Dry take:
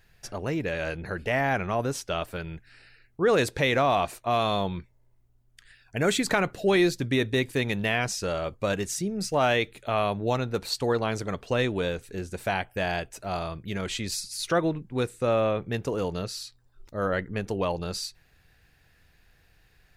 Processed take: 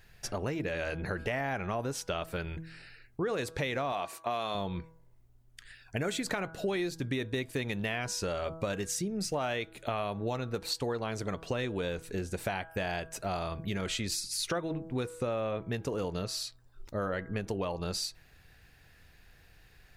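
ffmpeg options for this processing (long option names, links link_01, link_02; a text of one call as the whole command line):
ffmpeg -i in.wav -filter_complex "[0:a]asettb=1/sr,asplit=3[link_01][link_02][link_03];[link_01]atrim=end=3.924[link_04];[link_02]atrim=start=3.92:end=4.55,asetpts=PTS-STARTPTS,afade=type=in:duration=0.004:curve=qsin,afade=type=out:start_time=0.626:duration=0.004:curve=qsin,highpass=frequency=320:poles=1[link_05];[link_03]atrim=start=4.546[link_06];[link_04][link_05]acrossfade=duration=0.004:curve1=hsin:curve2=qsin[link_07];[link_07][link_06]acrossfade=duration=0.004:curve1=qsin:curve2=hsin,bandreject=frequency=162.4:width_type=h:width=4,bandreject=frequency=324.8:width_type=h:width=4,bandreject=frequency=487.2:width_type=h:width=4,bandreject=frequency=649.6:width_type=h:width=4,bandreject=frequency=812:width_type=h:width=4,bandreject=frequency=974.4:width_type=h:width=4,bandreject=frequency=1136.8:width_type=h:width=4,bandreject=frequency=1299.2:width_type=h:width=4,bandreject=frequency=1461.6:width_type=h:width=4,bandreject=frequency=1624:width_type=h:width=4,acompressor=threshold=-33dB:ratio=6,volume=2.5dB" out.wav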